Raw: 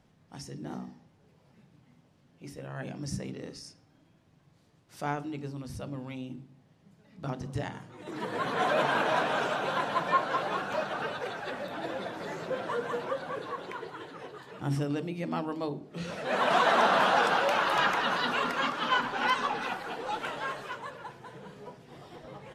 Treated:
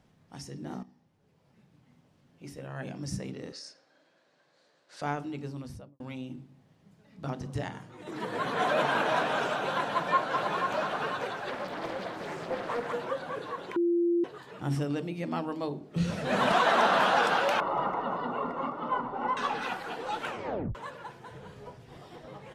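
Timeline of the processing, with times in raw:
0:00.83–0:02.58: fade in equal-power, from −13 dB
0:03.52–0:05.02: loudspeaker in its box 420–8,700 Hz, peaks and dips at 550 Hz +9 dB, 1,600 Hz +9 dB, 4,200 Hz +8 dB
0:05.59–0:06.00: fade out and dull
0:09.86–0:10.76: delay throw 490 ms, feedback 45%, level −6 dB
0:11.49–0:12.93: highs frequency-modulated by the lows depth 0.43 ms
0:13.76–0:14.24: beep over 344 Hz −22.5 dBFS
0:15.96–0:16.52: bass and treble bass +13 dB, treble +4 dB
0:17.60–0:19.37: Savitzky-Golay smoothing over 65 samples
0:20.26: tape stop 0.49 s
0:21.31–0:21.97: low shelf with overshoot 130 Hz +9.5 dB, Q 1.5

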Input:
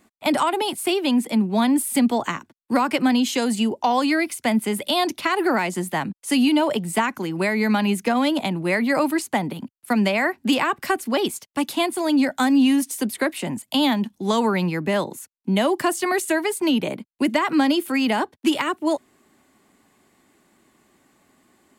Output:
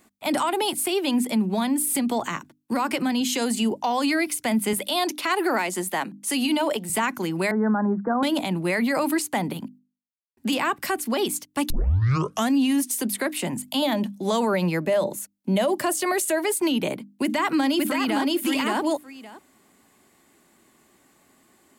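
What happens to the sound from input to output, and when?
0:01.50–0:03.21: downward compressor, threshold −19 dBFS
0:04.73–0:06.90: high-pass filter 260 Hz
0:07.51–0:08.23: Butterworth low-pass 1,600 Hz 72 dB per octave
0:09.79–0:10.37: silence
0:11.70: tape start 0.82 s
0:13.82–0:16.56: parametric band 590 Hz +13 dB 0.22 octaves
0:17.22–0:18.31: delay throw 570 ms, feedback 10%, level −1.5 dB
whole clip: high-shelf EQ 6,700 Hz +6 dB; mains-hum notches 50/100/150/200/250/300 Hz; brickwall limiter −15 dBFS

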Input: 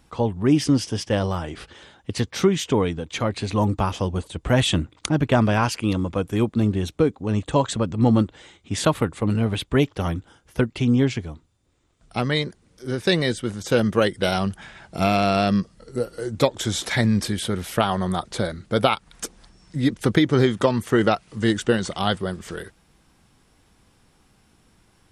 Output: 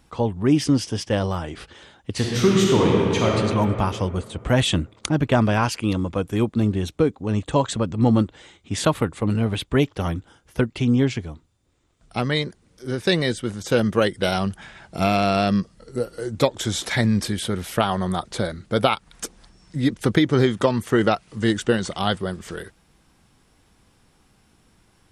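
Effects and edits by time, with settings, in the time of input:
0:02.11–0:03.35: thrown reverb, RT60 2.6 s, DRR −3 dB

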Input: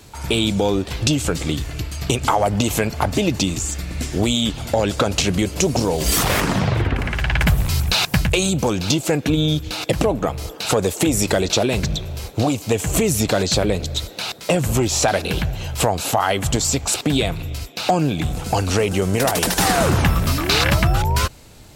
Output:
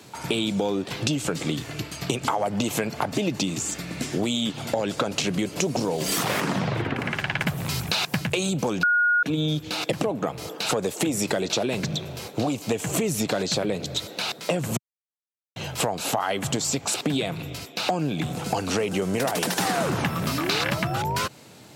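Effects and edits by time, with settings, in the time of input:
0:08.83–0:09.23: beep over 1,440 Hz −6.5 dBFS
0:14.77–0:15.56: silence
whole clip: high-pass filter 130 Hz 24 dB per octave; high-shelf EQ 5,900 Hz −4.5 dB; downward compressor 3 to 1, threshold −23 dBFS

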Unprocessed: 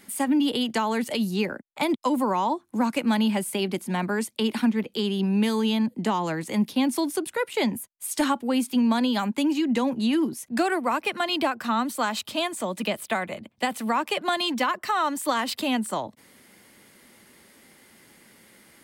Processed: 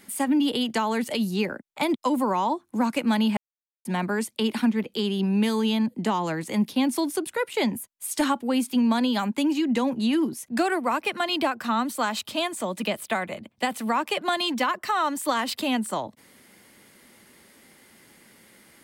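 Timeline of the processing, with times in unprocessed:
0:03.37–0:03.85: silence

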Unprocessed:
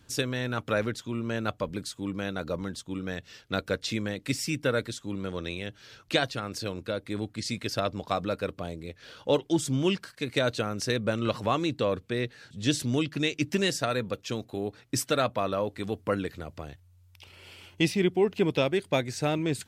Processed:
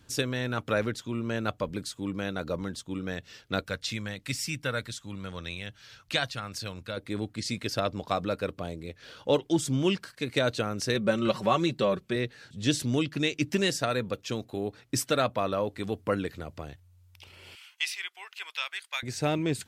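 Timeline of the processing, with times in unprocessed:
0:03.64–0:06.97: parametric band 360 Hz −10.5 dB 1.5 octaves
0:10.94–0:12.16: comb filter 5.3 ms
0:17.55–0:19.03: high-pass filter 1,200 Hz 24 dB per octave

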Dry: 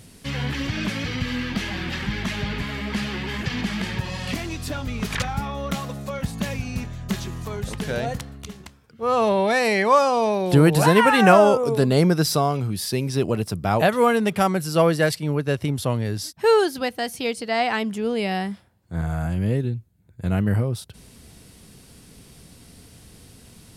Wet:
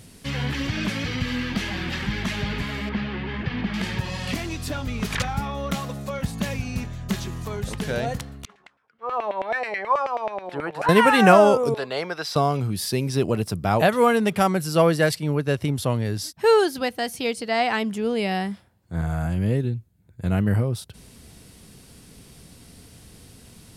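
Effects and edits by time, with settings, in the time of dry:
0:02.89–0:03.74: high-frequency loss of the air 300 metres
0:08.45–0:10.89: auto-filter band-pass saw down 9.3 Hz 630–2,300 Hz
0:11.74–0:12.36: three-way crossover with the lows and the highs turned down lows −23 dB, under 540 Hz, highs −17 dB, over 4,700 Hz

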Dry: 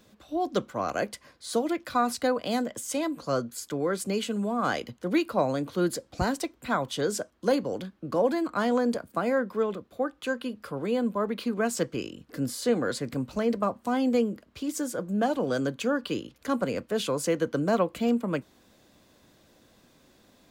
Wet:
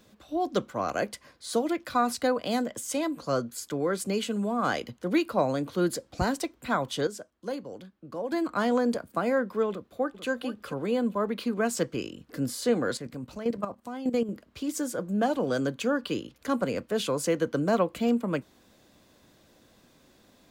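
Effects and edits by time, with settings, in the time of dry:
0:07.07–0:08.32: clip gain −9.5 dB
0:09.70–0:10.29: delay throw 440 ms, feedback 15%, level −10.5 dB
0:12.97–0:14.29: output level in coarse steps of 12 dB

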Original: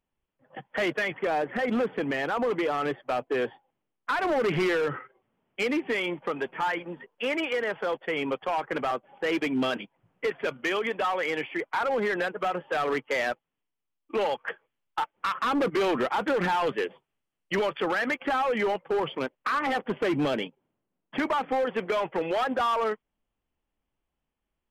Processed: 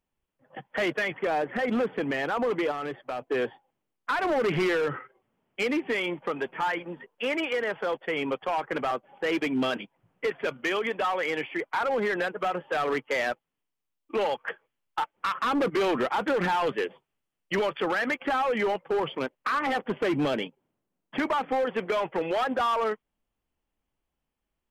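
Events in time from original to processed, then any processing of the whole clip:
0:02.71–0:03.24: downward compressor, threshold −29 dBFS

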